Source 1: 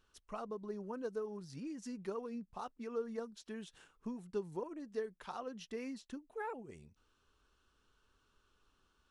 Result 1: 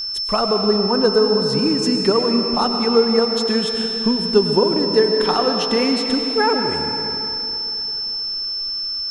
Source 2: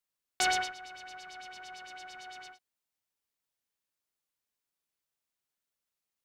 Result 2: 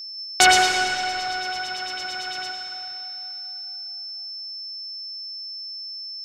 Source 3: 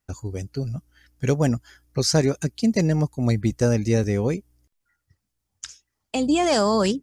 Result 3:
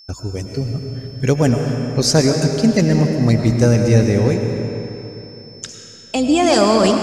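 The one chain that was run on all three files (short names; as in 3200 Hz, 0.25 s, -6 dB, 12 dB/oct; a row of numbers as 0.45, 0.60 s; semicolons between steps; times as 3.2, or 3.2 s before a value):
whine 5300 Hz -47 dBFS; digital reverb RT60 3.3 s, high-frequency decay 0.8×, pre-delay 65 ms, DRR 3.5 dB; normalise peaks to -1.5 dBFS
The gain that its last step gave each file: +23.5, +14.0, +5.5 dB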